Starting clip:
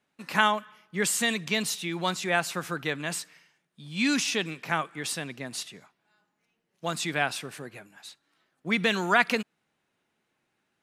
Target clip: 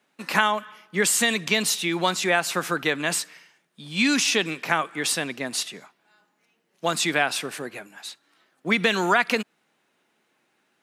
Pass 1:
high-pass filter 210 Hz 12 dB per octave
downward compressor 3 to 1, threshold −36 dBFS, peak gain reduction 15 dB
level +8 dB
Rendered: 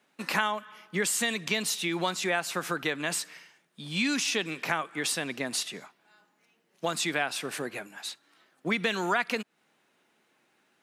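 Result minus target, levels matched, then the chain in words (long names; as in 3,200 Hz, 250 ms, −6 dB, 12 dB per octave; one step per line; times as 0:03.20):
downward compressor: peak gain reduction +7 dB
high-pass filter 210 Hz 12 dB per octave
downward compressor 3 to 1, threshold −25.5 dBFS, peak gain reduction 8 dB
level +8 dB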